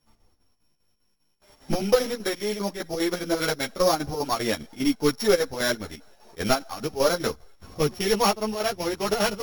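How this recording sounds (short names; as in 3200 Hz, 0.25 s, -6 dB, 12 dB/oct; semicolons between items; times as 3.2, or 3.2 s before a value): a buzz of ramps at a fixed pitch in blocks of 8 samples; chopped level 5 Hz, depth 60%, duty 70%; a shimmering, thickened sound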